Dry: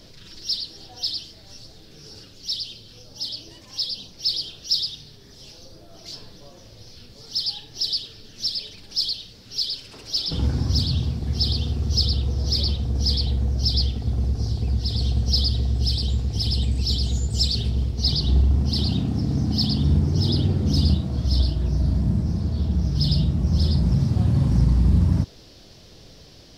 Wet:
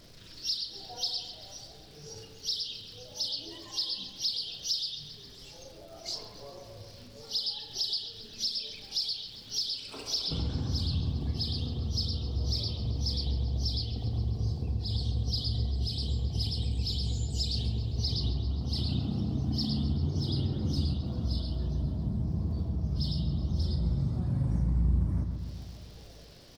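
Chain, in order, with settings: vibrato 2 Hz 38 cents; crackle 410/s -42 dBFS; spectral noise reduction 9 dB; compressor 4:1, threshold -33 dBFS, peak gain reduction 16.5 dB; doubler 36 ms -11 dB; dark delay 0.134 s, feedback 67%, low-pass 3300 Hz, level -7 dB; gain +2 dB

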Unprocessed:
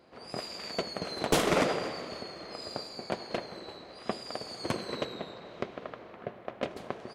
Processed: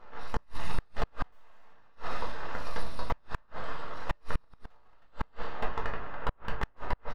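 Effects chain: 3.42–5.56 reverse delay 0.171 s, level -5.5 dB; high shelf 9500 Hz +6.5 dB; wrapped overs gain 25 dB; comb 1.1 ms, depth 73%; full-wave rectifier; EQ curve 230 Hz 0 dB, 1200 Hz +9 dB, 9400 Hz -19 dB; shoebox room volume 160 m³, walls furnished, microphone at 1.6 m; flipped gate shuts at -16 dBFS, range -36 dB; notch 2300 Hz, Q 14; gain +1 dB

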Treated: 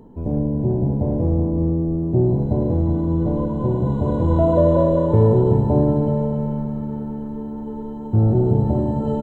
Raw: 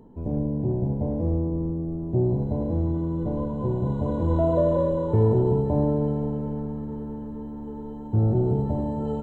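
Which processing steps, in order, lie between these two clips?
echo 0.376 s -8 dB; gain +5 dB

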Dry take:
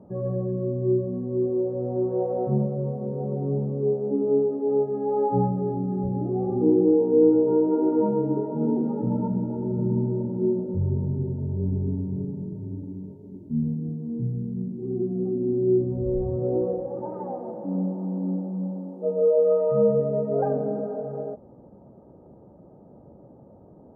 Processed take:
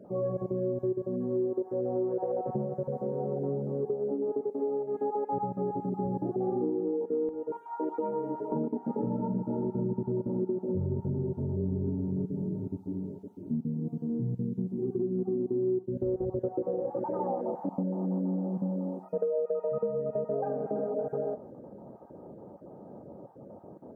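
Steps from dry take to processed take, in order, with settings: random spectral dropouts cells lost 21%; HPF 480 Hz 6 dB/oct, from 7.29 s 1400 Hz, from 8.52 s 250 Hz; compressor 12:1, threshold -32 dBFS, peak gain reduction 15.5 dB; thin delay 0.818 s, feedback 77%, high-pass 1400 Hz, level -22 dB; Schroeder reverb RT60 0.41 s, combs from 33 ms, DRR 15 dB; gain +5 dB

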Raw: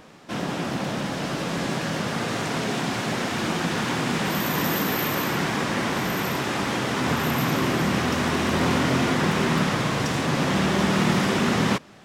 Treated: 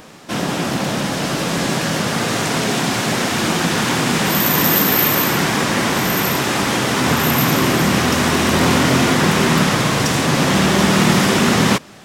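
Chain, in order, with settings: high shelf 5900 Hz +9 dB; gain +7 dB

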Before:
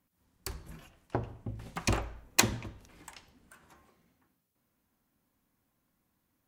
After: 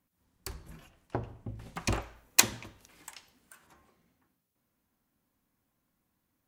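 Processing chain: 2–3.67 tilt +2 dB/oct; gain -1.5 dB

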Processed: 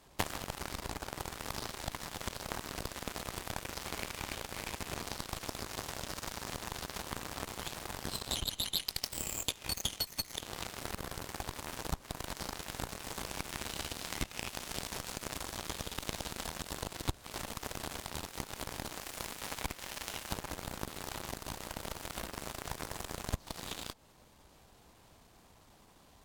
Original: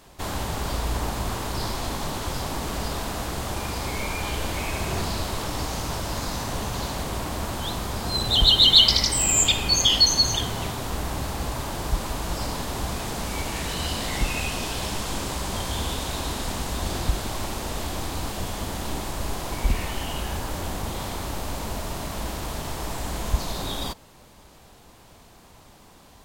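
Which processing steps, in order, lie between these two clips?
18.88–20.31 low shelf 260 Hz -10.5 dB; compressor 10:1, threshold -35 dBFS, peak gain reduction 24.5 dB; added harmonics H 3 -9 dB, 6 -39 dB, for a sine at -23.5 dBFS; gain +14.5 dB

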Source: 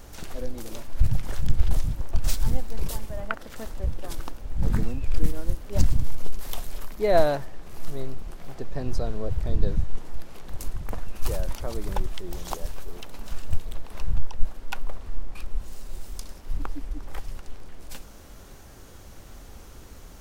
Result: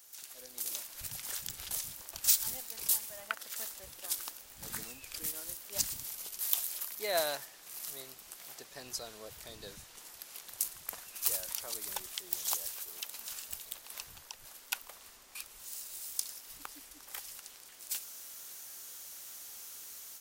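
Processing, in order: differentiator; AGC gain up to 10 dB; gain -2 dB

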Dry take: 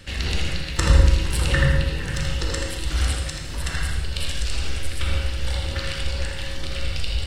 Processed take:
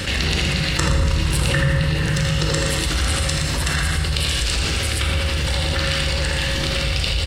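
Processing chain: HPF 81 Hz 6 dB/oct; on a send: feedback echo 0.119 s, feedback 39%, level -7.5 dB; on the sum: dynamic EQ 150 Hz, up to +7 dB, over -44 dBFS, Q 4.7; fast leveller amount 70%; gain -2 dB

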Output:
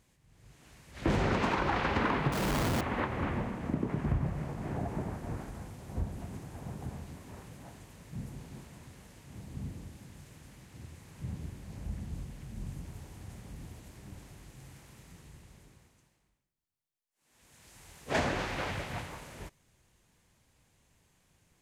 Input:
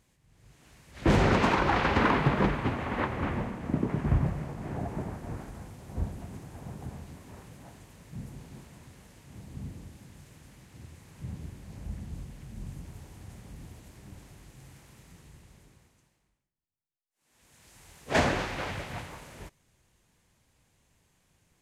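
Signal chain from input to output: 2.32–2.81 Schmitt trigger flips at -38 dBFS; compressor 2:1, threshold -30 dBFS, peak gain reduction 7 dB

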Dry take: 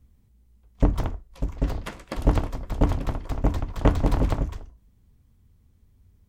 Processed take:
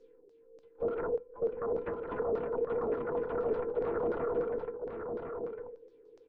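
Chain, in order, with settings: band inversion scrambler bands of 500 Hz; limiter -20.5 dBFS, peak gain reduction 16 dB; wavefolder -26 dBFS; resonator 340 Hz, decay 0.23 s, harmonics all, mix 60%; LFO low-pass saw down 3.4 Hz 410–5700 Hz; echo 1.054 s -5.5 dB; treble ducked by the level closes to 1100 Hz, closed at -40 dBFS; gain +3 dB

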